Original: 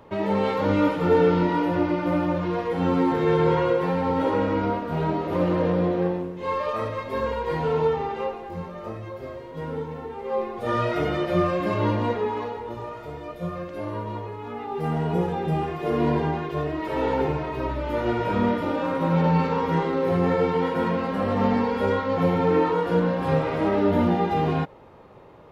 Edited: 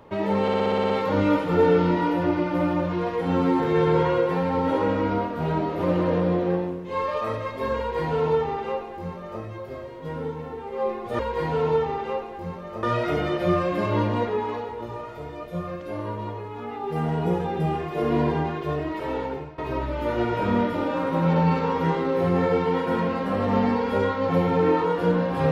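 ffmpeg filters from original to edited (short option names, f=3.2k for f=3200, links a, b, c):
-filter_complex "[0:a]asplit=12[a][b][c][d][e][f][g][h][i][j][k][l];[a]atrim=end=0.482[m];[b]atrim=start=0.418:end=0.482[n];[c]atrim=start=0.418:end=0.482[o];[d]atrim=start=0.418:end=0.482[p];[e]atrim=start=0.418:end=0.482[q];[f]atrim=start=0.418:end=0.482[r];[g]atrim=start=0.418:end=0.482[s];[h]atrim=start=0.418:end=0.482[t];[i]atrim=start=0.418:end=10.712[u];[j]atrim=start=7.298:end=8.942[v];[k]atrim=start=10.708:end=17.46,asetpts=PTS-STARTPTS,afade=t=out:st=6.032:d=0.72:silence=0.112202[w];[l]atrim=start=17.46,asetpts=PTS-STARTPTS,afade=t=in:d=0.004:c=hsin:silence=0.112202[x];[m][n]acrossfade=d=0.004:c1=hsin:c2=hsin[y];[y][o]acrossfade=d=0.004:c1=hsin:c2=hsin[z];[z][p]acrossfade=d=0.004:c1=hsin:c2=hsin[aa];[aa][q]acrossfade=d=0.004:c1=hsin:c2=hsin[ab];[ab][r]acrossfade=d=0.004:c1=hsin:c2=hsin[ac];[ac][s]acrossfade=d=0.004:c1=hsin:c2=hsin[ad];[ad][t]acrossfade=d=0.004:c1=hsin:c2=hsin[ae];[ae][u]acrossfade=d=0.004:c1=hsin:c2=hsin[af];[af][v]acrossfade=d=0.004:c1=hsin:c2=hsin[ag];[w][x]concat=n=2:v=0:a=1[ah];[ag][ah]acrossfade=d=0.004:c1=hsin:c2=hsin"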